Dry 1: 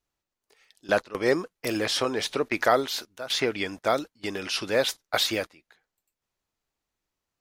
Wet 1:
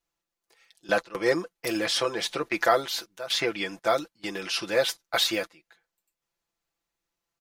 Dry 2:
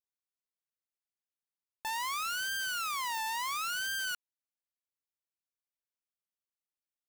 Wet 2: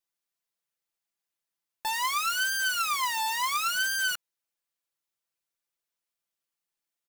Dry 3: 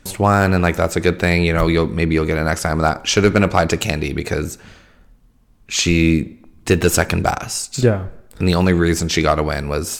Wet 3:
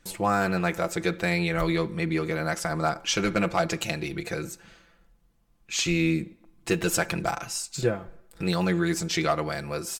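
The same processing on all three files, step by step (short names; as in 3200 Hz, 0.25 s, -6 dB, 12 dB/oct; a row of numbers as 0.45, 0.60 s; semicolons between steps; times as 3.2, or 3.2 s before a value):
low shelf 330 Hz -4.5 dB; comb 5.9 ms, depth 72%; match loudness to -27 LUFS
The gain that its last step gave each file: -1.5, +5.0, -10.0 dB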